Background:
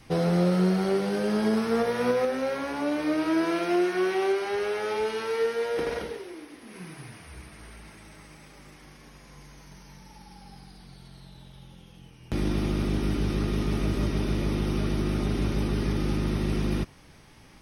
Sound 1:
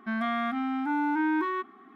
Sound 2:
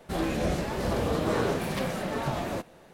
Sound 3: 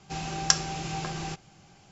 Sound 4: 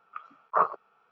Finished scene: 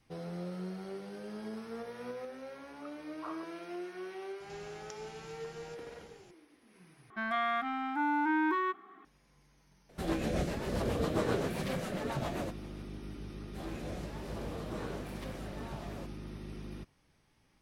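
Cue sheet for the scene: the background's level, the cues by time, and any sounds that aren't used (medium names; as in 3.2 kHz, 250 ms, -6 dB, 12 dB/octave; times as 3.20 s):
background -17.5 dB
2.69 s: add 4 -13 dB + compression, threshold -26 dBFS
4.40 s: add 3 -4.5 dB + compression, threshold -44 dBFS
7.10 s: replace with 1 -1 dB + peaking EQ 240 Hz -14.5 dB 0.35 oct
9.89 s: add 2 -3 dB + rotary cabinet horn 7.5 Hz
13.45 s: add 2 -14.5 dB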